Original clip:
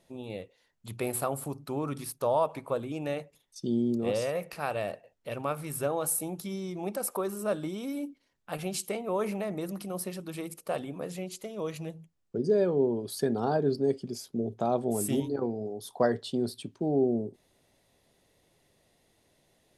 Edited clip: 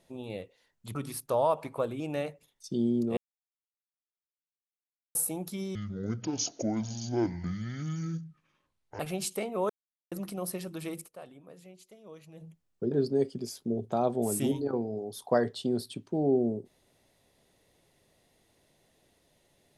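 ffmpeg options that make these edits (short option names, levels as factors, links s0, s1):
-filter_complex "[0:a]asplit=11[s0][s1][s2][s3][s4][s5][s6][s7][s8][s9][s10];[s0]atrim=end=0.952[s11];[s1]atrim=start=1.868:end=4.09,asetpts=PTS-STARTPTS,afade=t=out:st=2.218:d=0.004:c=hsin[s12];[s2]atrim=start=4.09:end=6.07,asetpts=PTS-STARTPTS,volume=0[s13];[s3]atrim=start=6.07:end=6.674,asetpts=PTS-STARTPTS,afade=t=in:d=0.004:c=hsin[s14];[s4]atrim=start=6.67:end=8.52,asetpts=PTS-STARTPTS,asetrate=25137,aresample=44100[s15];[s5]atrim=start=8.516:end=9.22,asetpts=PTS-STARTPTS,afade=t=out:st=0.7:d=0.004:c=hsin[s16];[s6]atrim=start=9.22:end=9.64,asetpts=PTS-STARTPTS,volume=0[s17];[s7]atrim=start=9.64:end=10.84,asetpts=PTS-STARTPTS,afade=t=in:d=0.004:c=hsin,afade=t=out:st=0.93:d=0.27:c=exp:silence=0.188365[s18];[s8]atrim=start=10.84:end=11.67,asetpts=PTS-STARTPTS,volume=0.188[s19];[s9]atrim=start=11.67:end=12.442,asetpts=PTS-STARTPTS,afade=t=in:d=0.27:c=exp:silence=0.188365[s20];[s10]atrim=start=13.598[s21];[s12][s13][s14]concat=n=3:v=0:a=1[s22];[s11][s22]acrossfade=d=0.004:c1=hsin:c2=hsin[s23];[s23][s15]acrossfade=d=0.004:c1=hsin:c2=hsin[s24];[s16][s17][s18][s19][s20]concat=n=5:v=0:a=1[s25];[s24][s25]acrossfade=d=0.004:c1=hsin:c2=hsin[s26];[s26][s21]acrossfade=d=0.004:c1=hsin:c2=hsin"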